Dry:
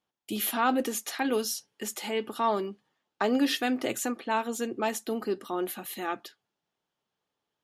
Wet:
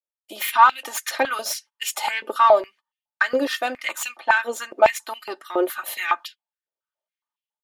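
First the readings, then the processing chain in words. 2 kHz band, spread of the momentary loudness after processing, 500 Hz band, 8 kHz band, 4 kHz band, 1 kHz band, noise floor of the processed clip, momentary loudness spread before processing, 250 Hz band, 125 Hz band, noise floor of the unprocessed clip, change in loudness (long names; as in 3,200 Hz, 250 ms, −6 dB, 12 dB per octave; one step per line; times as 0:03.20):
+12.5 dB, 13 LU, +8.0 dB, +4.5 dB, +5.5 dB, +11.0 dB, below −85 dBFS, 9 LU, −3.5 dB, can't be measured, below −85 dBFS, +8.5 dB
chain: stylus tracing distortion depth 0.029 ms
comb filter 3.3 ms, depth 55%
transient designer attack +4 dB, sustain −4 dB
automatic gain control gain up to 12 dB
noise gate −38 dBFS, range −21 dB
in parallel at −5 dB: soft clipping −13 dBFS, distortion −11 dB
on the sum: floating-point word with a short mantissa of 8 bits
high-pass on a step sequencer 7.2 Hz 490–2,700 Hz
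level −8.5 dB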